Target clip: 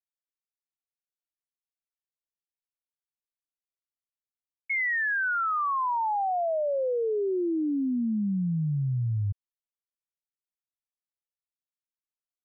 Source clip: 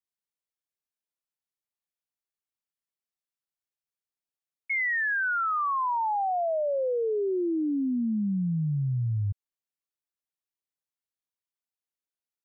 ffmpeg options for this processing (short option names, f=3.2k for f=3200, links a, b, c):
-filter_complex "[0:a]asettb=1/sr,asplit=3[a][b][c];[a]atrim=end=4.724[d];[b]atrim=start=4.72:end=5.35,asetpts=PTS-STARTPTS,afade=t=in:d=0.004:c=qsin,afade=t=out:st=0.626:d=0.004:c=qsin,highpass=f=540:w=0.5412,highpass=f=540:w=1.3066[e];[c]atrim=start=5.346[f];[d][e]acrossfade=d=0.004:c1=hsin:c2=qsin[g];[g][f]acrossfade=d=0.004:c1=qsin:c2=hsin,anlmdn=0.001"